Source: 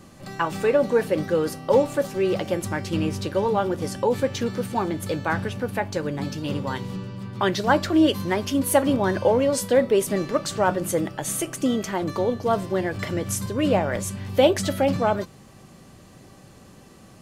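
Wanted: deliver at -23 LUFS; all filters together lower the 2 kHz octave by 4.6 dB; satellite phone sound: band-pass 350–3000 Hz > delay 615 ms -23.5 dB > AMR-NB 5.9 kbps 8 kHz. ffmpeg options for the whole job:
-af "highpass=350,lowpass=3000,equalizer=f=2000:t=o:g=-5.5,aecho=1:1:615:0.0668,volume=1.58" -ar 8000 -c:a libopencore_amrnb -b:a 5900

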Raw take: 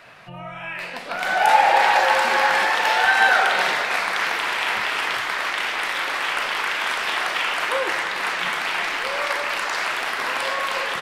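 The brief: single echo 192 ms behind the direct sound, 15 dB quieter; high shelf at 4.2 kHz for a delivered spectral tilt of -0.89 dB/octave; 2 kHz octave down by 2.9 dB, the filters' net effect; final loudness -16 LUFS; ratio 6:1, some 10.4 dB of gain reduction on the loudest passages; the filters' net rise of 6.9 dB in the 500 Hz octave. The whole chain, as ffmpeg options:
-af "equalizer=f=500:t=o:g=8.5,equalizer=f=2000:t=o:g=-5.5,highshelf=f=4200:g=5.5,acompressor=threshold=0.1:ratio=6,aecho=1:1:192:0.178,volume=2.51"

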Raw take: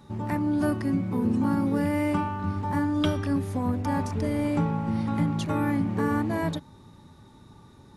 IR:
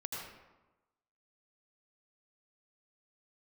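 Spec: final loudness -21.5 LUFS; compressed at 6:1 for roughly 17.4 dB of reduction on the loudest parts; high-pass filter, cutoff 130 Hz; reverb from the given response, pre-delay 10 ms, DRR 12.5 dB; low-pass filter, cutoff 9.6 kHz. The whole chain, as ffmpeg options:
-filter_complex "[0:a]highpass=130,lowpass=9600,acompressor=threshold=0.00891:ratio=6,asplit=2[s0][s1];[1:a]atrim=start_sample=2205,adelay=10[s2];[s1][s2]afir=irnorm=-1:irlink=0,volume=0.211[s3];[s0][s3]amix=inputs=2:normalize=0,volume=11.2"

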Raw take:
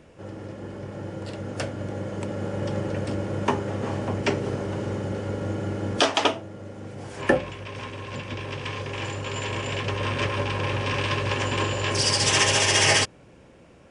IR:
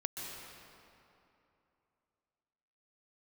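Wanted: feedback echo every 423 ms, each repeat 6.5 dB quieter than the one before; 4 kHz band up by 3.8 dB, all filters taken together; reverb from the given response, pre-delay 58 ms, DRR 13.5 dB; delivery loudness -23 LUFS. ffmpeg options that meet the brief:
-filter_complex "[0:a]equalizer=f=4000:t=o:g=5.5,aecho=1:1:423|846|1269|1692|2115|2538:0.473|0.222|0.105|0.0491|0.0231|0.0109,asplit=2[s0][s1];[1:a]atrim=start_sample=2205,adelay=58[s2];[s1][s2]afir=irnorm=-1:irlink=0,volume=0.178[s3];[s0][s3]amix=inputs=2:normalize=0"

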